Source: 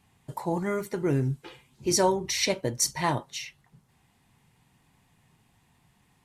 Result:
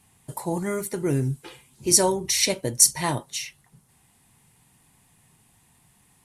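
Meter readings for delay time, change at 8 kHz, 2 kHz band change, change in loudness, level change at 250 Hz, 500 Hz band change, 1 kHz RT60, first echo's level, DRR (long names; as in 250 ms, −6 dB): no echo audible, +9.5 dB, +1.0 dB, +5.5 dB, +1.5 dB, +1.0 dB, no reverb audible, no echo audible, no reverb audible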